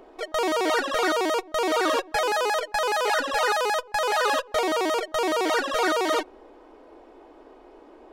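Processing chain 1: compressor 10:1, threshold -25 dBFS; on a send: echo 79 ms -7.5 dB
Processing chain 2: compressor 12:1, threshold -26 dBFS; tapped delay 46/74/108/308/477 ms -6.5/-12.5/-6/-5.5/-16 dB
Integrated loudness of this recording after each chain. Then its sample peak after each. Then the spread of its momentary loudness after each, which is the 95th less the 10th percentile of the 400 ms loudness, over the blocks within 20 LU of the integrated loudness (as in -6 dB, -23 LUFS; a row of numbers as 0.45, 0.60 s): -28.5, -27.5 LUFS; -15.5, -14.5 dBFS; 2, 16 LU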